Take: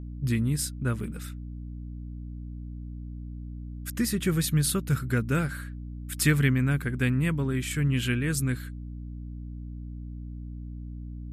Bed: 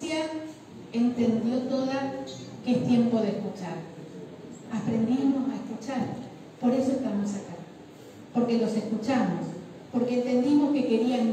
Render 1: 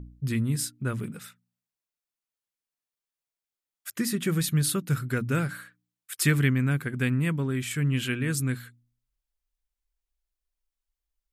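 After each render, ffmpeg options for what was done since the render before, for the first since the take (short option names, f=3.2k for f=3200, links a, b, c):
-af "bandreject=f=60:t=h:w=4,bandreject=f=120:t=h:w=4,bandreject=f=180:t=h:w=4,bandreject=f=240:t=h:w=4,bandreject=f=300:t=h:w=4"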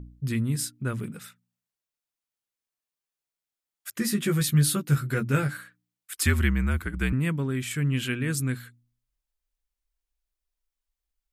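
-filter_complex "[0:a]asettb=1/sr,asplit=3[a][b][c];[a]atrim=end=4.004[d];[b]atrim=start=4:end=5.57,asetpts=PTS-STARTPTS,afade=t=in:d=0.004:c=qsin,afade=t=out:st=1.566:d=0.004:c=qsin,asplit=2[e][f];[f]adelay=14,volume=-3dB[g];[e][g]amix=inputs=2:normalize=0,atrim=end_sample=69237[h];[c]atrim=start=5.566[i];[d][h]acrossfade=d=0.004:c1=hsin:c2=qsin[j];[j][i]acrossfade=d=0.004:c1=qsin:c2=hsin,asettb=1/sr,asplit=3[k][l][m];[k]atrim=end=6.134[n];[l]atrim=start=6.13:end=7.13,asetpts=PTS-STARTPTS,afade=t=in:d=0.004:c=qsin,afade=t=out:st=0.996:d=0.004:c=qsin,afreqshift=-62[o];[m]atrim=start=7.126[p];[n][o]acrossfade=d=0.004:c1=hsin:c2=qsin[q];[q][p]acrossfade=d=0.004:c1=qsin:c2=hsin"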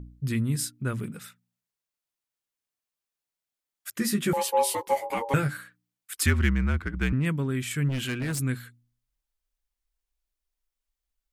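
-filter_complex "[0:a]asettb=1/sr,asplit=3[a][b][c];[a]atrim=end=4.334[d];[b]atrim=start=4.33:end=5.34,asetpts=PTS-STARTPTS,afade=t=in:d=0.004:c=qsin,afade=t=out:st=1.006:d=0.004:c=qsin,aeval=exprs='val(0)*sin(2*PI*690*n/s)':c=same[e];[c]atrim=start=5.336[f];[d][e]acrossfade=d=0.004:c1=hsin:c2=qsin[g];[g][f]acrossfade=d=0.004:c1=qsin:c2=hsin,asettb=1/sr,asplit=3[h][i][j];[h]atrim=end=6.264[k];[i]atrim=start=6.26:end=7.26,asetpts=PTS-STARTPTS,afade=t=in:d=0.004:c=qsin,afade=t=out:st=0.996:d=0.004:c=qsin,adynamicsmooth=sensitivity=6.5:basefreq=3.1k[l];[j]atrim=start=7.256[m];[k][l]acrossfade=d=0.004:c1=hsin:c2=qsin[n];[n][m]acrossfade=d=0.004:c1=qsin:c2=hsin,asplit=3[o][p][q];[o]afade=t=out:st=7.88:d=0.02[r];[p]volume=26dB,asoftclip=hard,volume=-26dB,afade=t=in:st=7.88:d=0.02,afade=t=out:st=8.38:d=0.02[s];[q]afade=t=in:st=8.38:d=0.02[t];[r][s][t]amix=inputs=3:normalize=0"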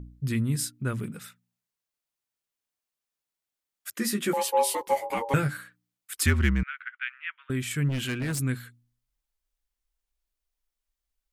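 -filter_complex "[0:a]asettb=1/sr,asplit=3[a][b][c];[a]atrim=end=3.934[d];[b]atrim=start=3.93:end=4.81,asetpts=PTS-STARTPTS,afade=t=in:d=0.004:c=qsin,afade=t=out:st=0.876:d=0.004:c=qsin,highpass=f=210:w=0.5412,highpass=f=210:w=1.3066[e];[c]atrim=start=4.806[f];[d][e]acrossfade=d=0.004:c1=hsin:c2=qsin[g];[g][f]acrossfade=d=0.004:c1=qsin:c2=hsin,asettb=1/sr,asplit=3[h][i][j];[h]atrim=end=6.634[k];[i]atrim=start=6.63:end=7.5,asetpts=PTS-STARTPTS,afade=t=in:d=0.004:c=qsin,afade=t=out:st=0.866:d=0.004:c=qsin,asuperpass=centerf=2100:order=8:qfactor=1.1[l];[j]atrim=start=7.496[m];[k][l]acrossfade=d=0.004:c1=hsin:c2=qsin[n];[n][m]acrossfade=d=0.004:c1=qsin:c2=hsin"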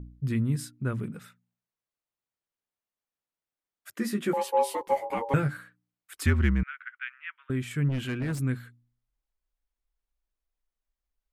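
-af "highshelf=f=2.7k:g=-11.5"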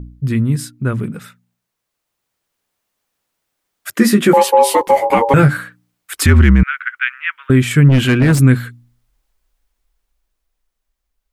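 -af "dynaudnorm=f=370:g=11:m=9dB,alimiter=level_in=11dB:limit=-1dB:release=50:level=0:latency=1"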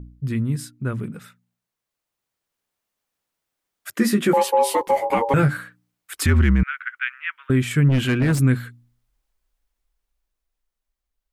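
-af "volume=-7.5dB"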